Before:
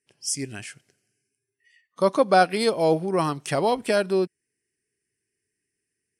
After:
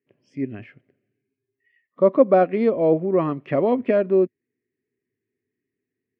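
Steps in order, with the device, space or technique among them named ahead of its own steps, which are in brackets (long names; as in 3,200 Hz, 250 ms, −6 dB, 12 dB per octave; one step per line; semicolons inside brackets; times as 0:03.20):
bass cabinet (loudspeaker in its box 83–2,100 Hz, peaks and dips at 110 Hz +4 dB, 250 Hz +10 dB, 370 Hz +4 dB, 560 Hz +6 dB, 850 Hz −9 dB, 1,500 Hz −9 dB)
0:03.19–0:03.97: parametric band 2,400 Hz +3 dB 1.7 octaves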